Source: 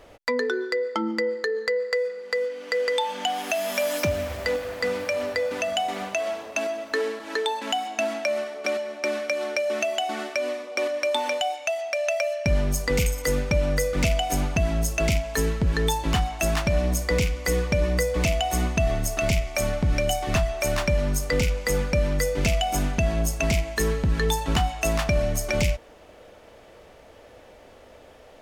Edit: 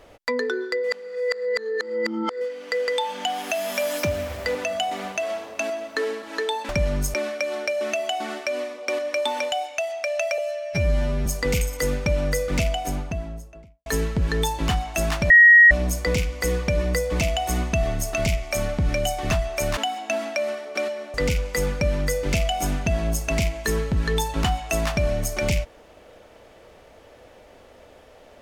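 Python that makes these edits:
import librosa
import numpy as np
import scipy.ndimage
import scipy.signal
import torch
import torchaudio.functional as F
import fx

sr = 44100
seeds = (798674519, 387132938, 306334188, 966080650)

y = fx.studio_fade_out(x, sr, start_s=13.91, length_s=1.4)
y = fx.edit(y, sr, fx.reverse_span(start_s=0.84, length_s=1.57),
    fx.cut(start_s=4.55, length_s=0.97),
    fx.swap(start_s=7.66, length_s=1.37, other_s=20.81, other_length_s=0.45),
    fx.stretch_span(start_s=12.27, length_s=0.44, factor=2.0),
    fx.insert_tone(at_s=16.75, length_s=0.41, hz=1890.0, db=-7.5), tone=tone)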